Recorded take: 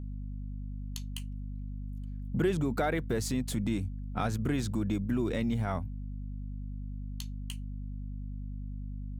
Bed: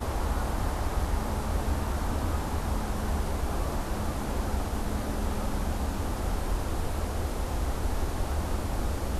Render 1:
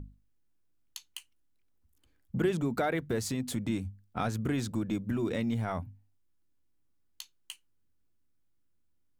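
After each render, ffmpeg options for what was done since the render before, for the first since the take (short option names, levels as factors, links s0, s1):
-af "bandreject=f=50:t=h:w=6,bandreject=f=100:t=h:w=6,bandreject=f=150:t=h:w=6,bandreject=f=200:t=h:w=6,bandreject=f=250:t=h:w=6"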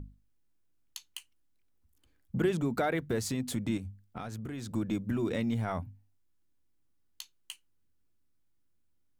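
-filter_complex "[0:a]asettb=1/sr,asplit=3[s0][s1][s2];[s0]atrim=end=3.774[s3];[s1]atrim=start=3.77:end=4.71,asetpts=PTS-STARTPTS,afade=t=in:d=0.004:c=qsin,afade=t=out:st=0.936:d=0.004:c=qsin,acompressor=threshold=0.0158:ratio=6:attack=3.2:release=140:knee=1:detection=peak[s4];[s2]atrim=start=4.706[s5];[s3][s4]acrossfade=d=0.004:c1=hsin:c2=qsin[s6];[s6][s5]acrossfade=d=0.004:c1=qsin:c2=hsin"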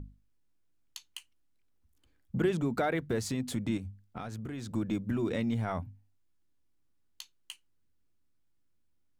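-af "highshelf=f=9700:g=-6.5"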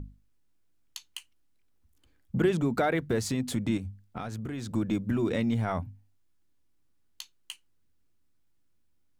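-af "volume=1.5"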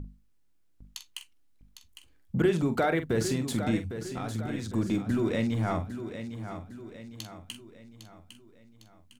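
-filter_complex "[0:a]asplit=2[s0][s1];[s1]adelay=45,volume=0.316[s2];[s0][s2]amix=inputs=2:normalize=0,aecho=1:1:805|1610|2415|3220|4025:0.316|0.145|0.0669|0.0308|0.0142"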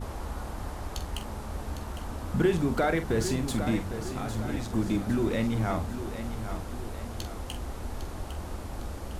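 -filter_complex "[1:a]volume=0.447[s0];[0:a][s0]amix=inputs=2:normalize=0"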